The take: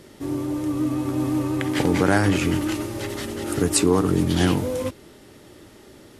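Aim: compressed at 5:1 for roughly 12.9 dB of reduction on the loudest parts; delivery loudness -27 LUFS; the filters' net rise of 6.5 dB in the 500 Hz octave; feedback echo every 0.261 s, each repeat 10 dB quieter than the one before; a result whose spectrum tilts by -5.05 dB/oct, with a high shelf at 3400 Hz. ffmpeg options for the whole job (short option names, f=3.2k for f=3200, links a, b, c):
-af "equalizer=f=500:t=o:g=8,highshelf=f=3.4k:g=4.5,acompressor=threshold=-24dB:ratio=5,aecho=1:1:261|522|783|1044:0.316|0.101|0.0324|0.0104"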